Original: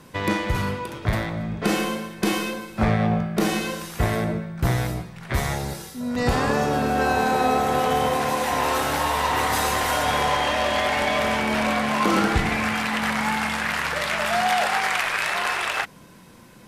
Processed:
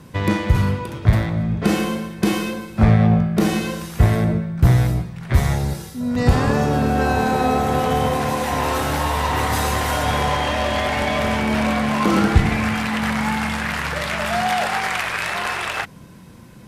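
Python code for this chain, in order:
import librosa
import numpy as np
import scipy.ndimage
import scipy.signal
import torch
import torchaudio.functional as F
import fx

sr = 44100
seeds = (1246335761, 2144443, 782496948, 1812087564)

y = fx.peak_eq(x, sr, hz=85.0, db=10.5, octaves=2.9)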